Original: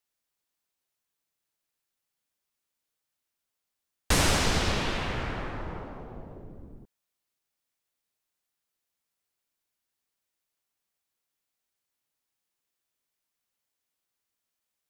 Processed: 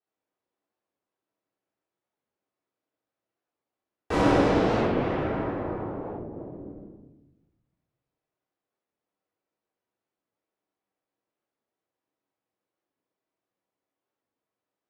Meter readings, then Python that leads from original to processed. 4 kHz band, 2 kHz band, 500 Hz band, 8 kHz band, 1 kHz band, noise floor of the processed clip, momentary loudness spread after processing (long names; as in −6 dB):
−9.5 dB, −2.5 dB, +9.0 dB, −17.0 dB, +4.5 dB, below −85 dBFS, 19 LU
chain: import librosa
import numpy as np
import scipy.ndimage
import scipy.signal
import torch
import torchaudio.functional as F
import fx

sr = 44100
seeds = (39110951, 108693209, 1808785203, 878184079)

y = fx.bandpass_q(x, sr, hz=430.0, q=1.0)
y = fx.room_shoebox(y, sr, seeds[0], volume_m3=360.0, walls='mixed', distance_m=3.6)
y = fx.record_warp(y, sr, rpm=45.0, depth_cents=250.0)